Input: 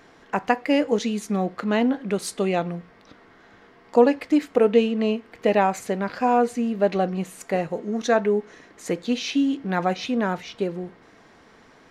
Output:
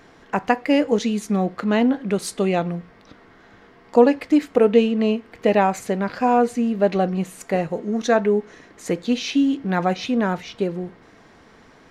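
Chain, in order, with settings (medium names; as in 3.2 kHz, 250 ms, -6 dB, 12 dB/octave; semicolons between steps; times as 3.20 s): bass shelf 180 Hz +5 dB; trim +1.5 dB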